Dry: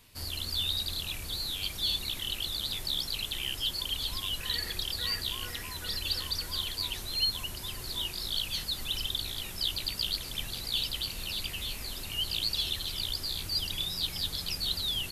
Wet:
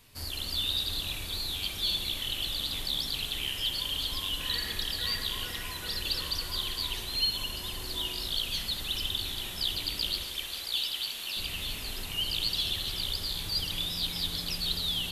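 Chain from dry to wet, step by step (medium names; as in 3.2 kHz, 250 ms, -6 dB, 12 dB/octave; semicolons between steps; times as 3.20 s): 10.23–11.37 s: high-pass 800 Hz 6 dB/octave; spring tank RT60 2 s, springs 38/45/52 ms, chirp 30 ms, DRR 2 dB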